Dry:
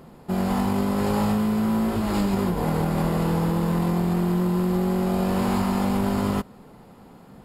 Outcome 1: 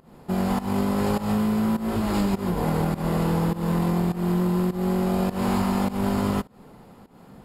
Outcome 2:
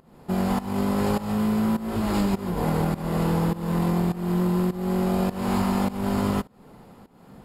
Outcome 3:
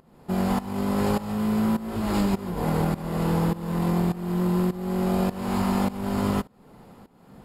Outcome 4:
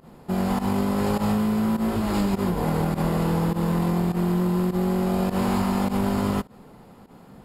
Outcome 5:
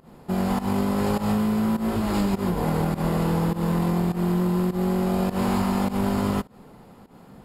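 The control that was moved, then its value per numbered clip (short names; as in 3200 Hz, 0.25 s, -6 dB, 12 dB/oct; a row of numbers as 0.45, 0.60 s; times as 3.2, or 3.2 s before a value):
pump, release: 207, 338, 509, 83, 137 ms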